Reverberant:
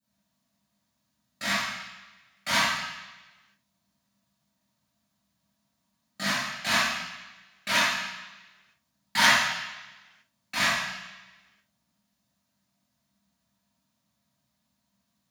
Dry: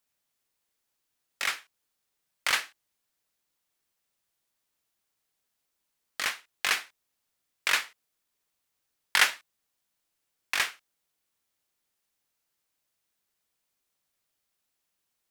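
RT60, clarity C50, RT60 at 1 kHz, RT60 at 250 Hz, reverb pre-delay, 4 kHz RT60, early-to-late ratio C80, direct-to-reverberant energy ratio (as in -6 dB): 1.1 s, -2.5 dB, 1.1 s, 1.2 s, 3 ms, 1.2 s, 1.0 dB, -15.5 dB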